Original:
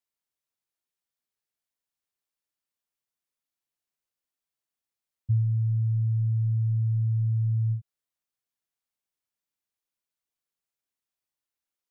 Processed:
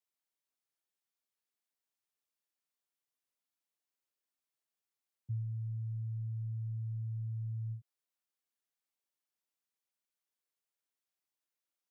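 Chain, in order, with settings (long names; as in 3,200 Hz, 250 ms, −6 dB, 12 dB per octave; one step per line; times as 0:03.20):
high-pass filter 200 Hz 12 dB per octave
level −3 dB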